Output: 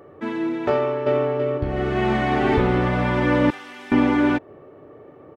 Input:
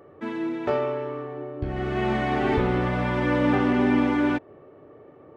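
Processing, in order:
0:00.73–0:01.24: delay throw 330 ms, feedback 40%, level −0.5 dB
0:03.50–0:03.92: first difference
level +4 dB

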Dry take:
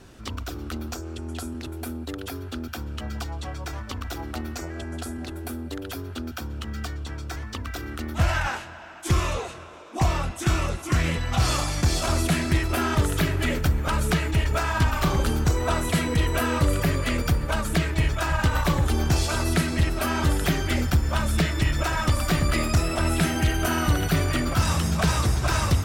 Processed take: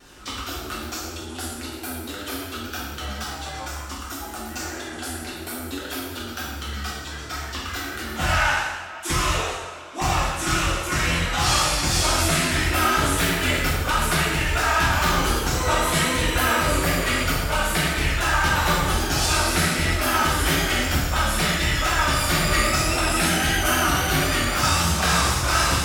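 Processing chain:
low-shelf EQ 430 Hz −11.5 dB
pitch vibrato 3.8 Hz 78 cents
0:03.67–0:04.51: graphic EQ with 10 bands 125 Hz −10 dB, 250 Hz +3 dB, 500 Hz −6 dB, 2,000 Hz −6 dB, 4,000 Hz −7 dB, 8,000 Hz +4 dB
reverb whose tail is shaped and stops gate 330 ms falling, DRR −7 dB

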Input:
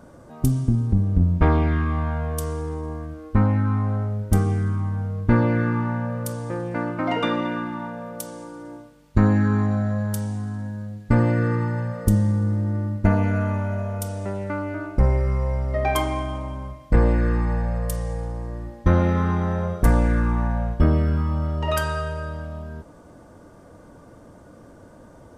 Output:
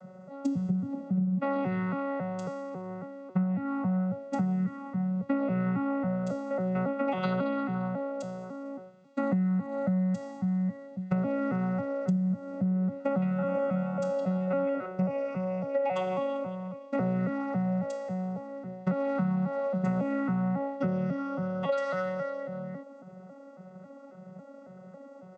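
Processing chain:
vocoder with an arpeggio as carrier bare fifth, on F#3, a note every 274 ms
comb filter 1.5 ms, depth 88%
downward compressor 10 to 1, threshold −25 dBFS, peak gain reduction 14.5 dB
0:12.67–0:14.86: echo through a band-pass that steps 165 ms, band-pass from 3,100 Hz, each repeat −1.4 octaves, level −0.5 dB

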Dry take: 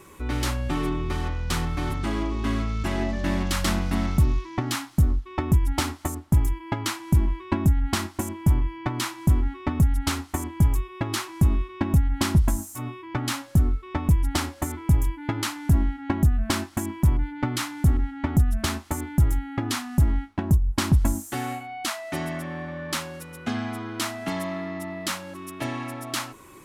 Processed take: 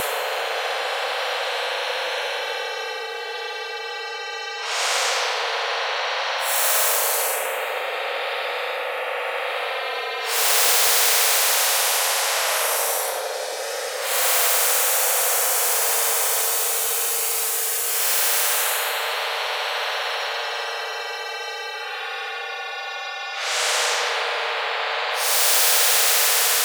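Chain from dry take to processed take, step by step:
downward compressor 5 to 1, threshold −20 dBFS, peak gain reduction 6.5 dB
harmonic generator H 8 −10 dB, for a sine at −11 dBFS
frequency shifter +460 Hz
extreme stretch with random phases 14×, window 0.05 s, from 0:11.46
every bin compressed towards the loudest bin 4 to 1
level +3 dB

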